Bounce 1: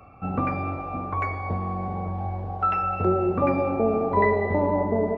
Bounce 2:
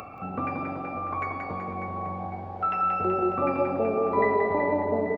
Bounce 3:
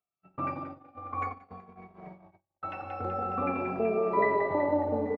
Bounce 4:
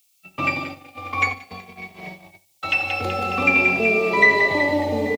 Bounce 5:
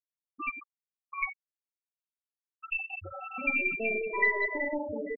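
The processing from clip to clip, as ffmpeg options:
ffmpeg -i in.wav -af "aecho=1:1:180|378|595.8|835.4|1099:0.631|0.398|0.251|0.158|0.1,acompressor=mode=upward:threshold=-25dB:ratio=2.5,highpass=frequency=230:poles=1,volume=-3.5dB" out.wav
ffmpeg -i in.wav -filter_complex "[0:a]agate=range=-52dB:threshold=-30dB:ratio=16:detection=peak,asplit=2[link_01][link_02];[link_02]adelay=2.6,afreqshift=-0.5[link_03];[link_01][link_03]amix=inputs=2:normalize=1" out.wav
ffmpeg -i in.wav -filter_complex "[0:a]acrossover=split=120|400|1100[link_01][link_02][link_03][link_04];[link_03]alimiter=level_in=5.5dB:limit=-24dB:level=0:latency=1,volume=-5.5dB[link_05];[link_01][link_02][link_05][link_04]amix=inputs=4:normalize=0,aexciter=amount=10.2:drive=7.3:freq=2200,aecho=1:1:74|148|222:0.112|0.037|0.0122,volume=8dB" out.wav
ffmpeg -i in.wav -af "flanger=delay=9.8:depth=6.5:regen=-88:speed=1.7:shape=sinusoidal,aeval=exprs='0.422*(cos(1*acos(clip(val(0)/0.422,-1,1)))-cos(1*PI/2))+0.0211*(cos(8*acos(clip(val(0)/0.422,-1,1)))-cos(8*PI/2))':channel_layout=same,afftfilt=real='re*gte(hypot(re,im),0.2)':imag='im*gte(hypot(re,im),0.2)':win_size=1024:overlap=0.75,volume=-6.5dB" out.wav

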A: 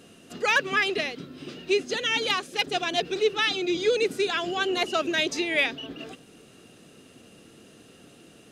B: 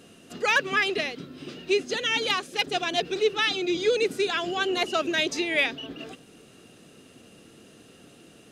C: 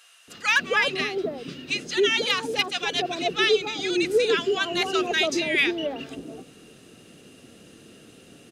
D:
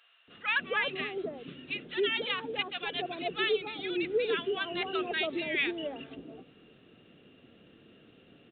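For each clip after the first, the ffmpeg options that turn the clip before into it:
ffmpeg -i in.wav -af anull out.wav
ffmpeg -i in.wav -filter_complex "[0:a]acrossover=split=930[link_01][link_02];[link_01]adelay=280[link_03];[link_03][link_02]amix=inputs=2:normalize=0,volume=2.5dB" out.wav
ffmpeg -i in.wav -af "aresample=8000,aresample=44100,volume=-8dB" out.wav

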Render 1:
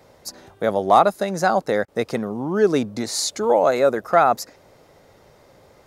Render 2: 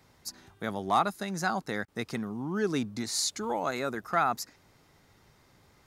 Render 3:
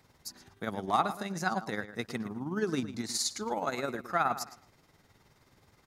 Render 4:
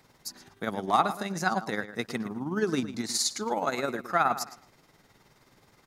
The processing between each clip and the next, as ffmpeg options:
ffmpeg -i in.wav -af "equalizer=frequency=550:width=1.5:gain=-14,volume=-5.5dB" out.wav
ffmpeg -i in.wav -filter_complex "[0:a]asplit=2[link_01][link_02];[link_02]adelay=117,lowpass=frequency=4200:poles=1,volume=-12dB,asplit=2[link_03][link_04];[link_04]adelay=117,lowpass=frequency=4200:poles=1,volume=0.26,asplit=2[link_05][link_06];[link_06]adelay=117,lowpass=frequency=4200:poles=1,volume=0.26[link_07];[link_01][link_03][link_05][link_07]amix=inputs=4:normalize=0,tremolo=f=19:d=0.51" out.wav
ffmpeg -i in.wav -af "equalizer=frequency=74:width=1.5:gain=-10.5,volume=4dB" out.wav

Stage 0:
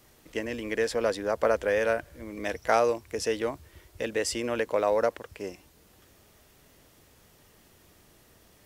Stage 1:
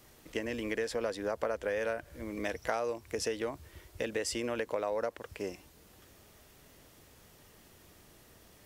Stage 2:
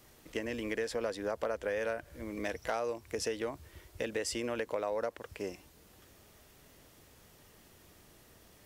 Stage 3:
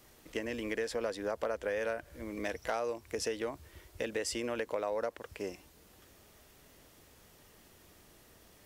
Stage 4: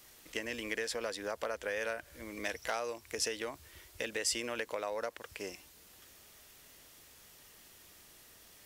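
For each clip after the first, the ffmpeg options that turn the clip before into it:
ffmpeg -i in.wav -af "acompressor=threshold=-31dB:ratio=4" out.wav
ffmpeg -i in.wav -af "volume=22.5dB,asoftclip=hard,volume=-22.5dB,volume=-1dB" out.wav
ffmpeg -i in.wav -af "equalizer=frequency=120:width_type=o:width=1.2:gain=-2.5" out.wav
ffmpeg -i in.wav -af "tiltshelf=frequency=1200:gain=-5.5" out.wav

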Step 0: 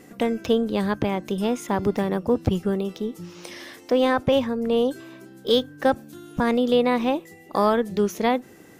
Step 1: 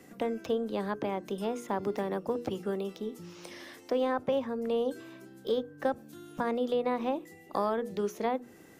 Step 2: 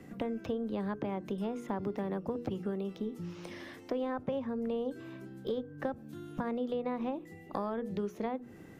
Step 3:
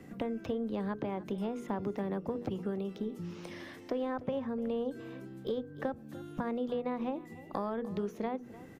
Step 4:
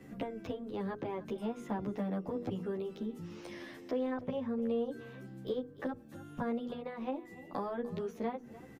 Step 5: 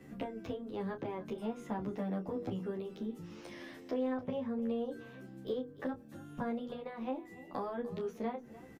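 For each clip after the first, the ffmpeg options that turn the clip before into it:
ffmpeg -i in.wav -filter_complex "[0:a]acrossover=split=110|260|1500[link_01][link_02][link_03][link_04];[link_01]acompressor=threshold=-56dB:ratio=4[link_05];[link_02]acompressor=threshold=-38dB:ratio=4[link_06];[link_03]acompressor=threshold=-20dB:ratio=4[link_07];[link_04]acompressor=threshold=-42dB:ratio=4[link_08];[link_05][link_06][link_07][link_08]amix=inputs=4:normalize=0,bandreject=frequency=60:width_type=h:width=6,bandreject=frequency=120:width_type=h:width=6,bandreject=frequency=180:width_type=h:width=6,bandreject=frequency=240:width_type=h:width=6,bandreject=frequency=300:width_type=h:width=6,bandreject=frequency=360:width_type=h:width=6,bandreject=frequency=420:width_type=h:width=6,bandreject=frequency=480:width_type=h:width=6,volume=-5.5dB" out.wav
ffmpeg -i in.wav -af "bass=frequency=250:gain=9,treble=frequency=4000:gain=-8,acompressor=threshold=-34dB:ratio=2.5" out.wav
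ffmpeg -i in.wav -af "aecho=1:1:298:0.133" out.wav
ffmpeg -i in.wav -filter_complex "[0:a]asplit=2[link_01][link_02];[link_02]adelay=11.1,afreqshift=-0.58[link_03];[link_01][link_03]amix=inputs=2:normalize=1,volume=1.5dB" out.wav
ffmpeg -i in.wav -filter_complex "[0:a]asplit=2[link_01][link_02];[link_02]adelay=27,volume=-9.5dB[link_03];[link_01][link_03]amix=inputs=2:normalize=0,volume=-1.5dB" out.wav

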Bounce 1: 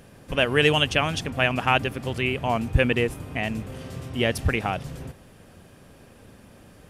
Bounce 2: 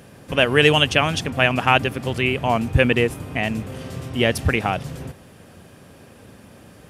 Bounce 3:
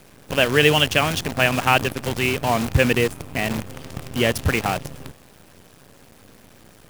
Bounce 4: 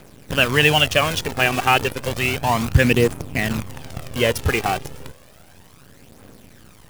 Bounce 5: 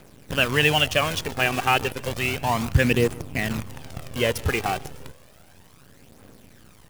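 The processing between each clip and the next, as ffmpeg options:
ffmpeg -i in.wav -af "highpass=68,volume=4.5dB" out.wav
ffmpeg -i in.wav -af "acrusher=bits=5:dc=4:mix=0:aa=0.000001,volume=-1dB" out.wav
ffmpeg -i in.wav -af "aphaser=in_gain=1:out_gain=1:delay=2.7:decay=0.44:speed=0.32:type=triangular" out.wav
ffmpeg -i in.wav -af "aecho=1:1:144:0.0708,volume=-4dB" out.wav

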